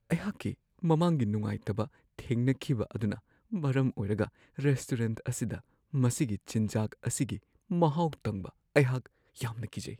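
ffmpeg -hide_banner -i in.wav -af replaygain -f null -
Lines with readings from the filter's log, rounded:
track_gain = +11.9 dB
track_peak = 0.270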